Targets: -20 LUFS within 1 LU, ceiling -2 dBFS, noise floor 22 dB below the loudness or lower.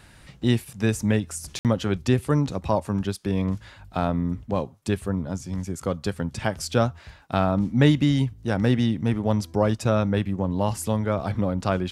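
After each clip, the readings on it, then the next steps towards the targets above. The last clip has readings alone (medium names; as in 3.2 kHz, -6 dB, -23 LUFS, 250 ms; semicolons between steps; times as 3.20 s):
dropouts 1; longest dropout 58 ms; loudness -25.0 LUFS; peak level -5.0 dBFS; loudness target -20.0 LUFS
-> interpolate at 1.59 s, 58 ms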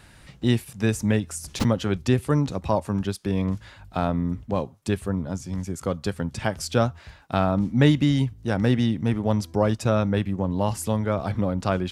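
dropouts 0; loudness -25.0 LUFS; peak level -5.0 dBFS; loudness target -20.0 LUFS
-> trim +5 dB; peak limiter -2 dBFS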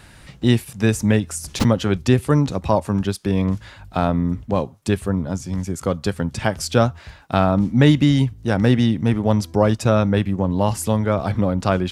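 loudness -20.0 LUFS; peak level -2.0 dBFS; noise floor -45 dBFS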